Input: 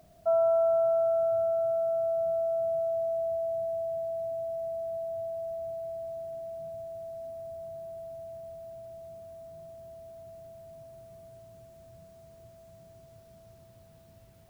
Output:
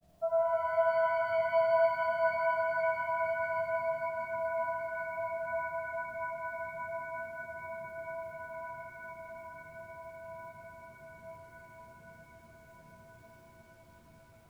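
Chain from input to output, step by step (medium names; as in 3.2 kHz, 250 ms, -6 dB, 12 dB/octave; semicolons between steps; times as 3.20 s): granulator, pitch spread up and down by 0 st; pitch-shifted reverb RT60 3.9 s, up +7 st, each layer -2 dB, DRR 0.5 dB; trim -5 dB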